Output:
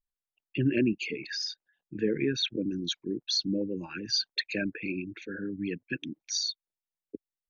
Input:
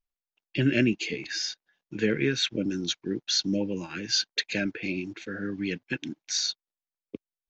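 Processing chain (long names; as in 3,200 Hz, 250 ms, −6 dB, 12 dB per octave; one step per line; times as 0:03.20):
spectral envelope exaggerated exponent 2
level −2.5 dB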